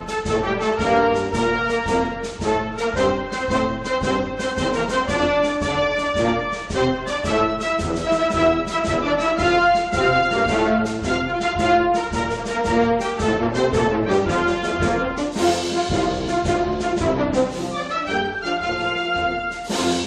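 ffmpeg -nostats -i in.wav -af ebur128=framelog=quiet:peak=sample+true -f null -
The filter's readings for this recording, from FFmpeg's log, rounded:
Integrated loudness:
  I:         -20.6 LUFS
  Threshold: -30.6 LUFS
Loudness range:
  LRA:         3.2 LU
  Threshold: -40.5 LUFS
  LRA low:   -22.0 LUFS
  LRA high:  -18.8 LUFS
Sample peak:
  Peak:       -5.6 dBFS
True peak:
  Peak:       -5.6 dBFS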